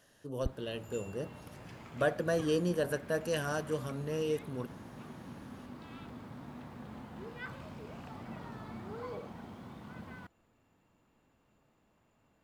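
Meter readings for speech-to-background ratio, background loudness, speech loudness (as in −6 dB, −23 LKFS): 12.5 dB, −47.5 LKFS, −35.0 LKFS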